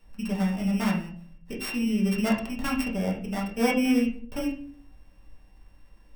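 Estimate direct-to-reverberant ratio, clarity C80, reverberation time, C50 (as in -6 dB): -3.5 dB, 12.5 dB, 0.50 s, 8.0 dB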